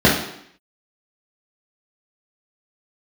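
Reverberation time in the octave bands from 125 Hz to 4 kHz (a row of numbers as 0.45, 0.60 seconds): 0.60, 0.75, 0.70, 0.70, 0.75, 0.70 seconds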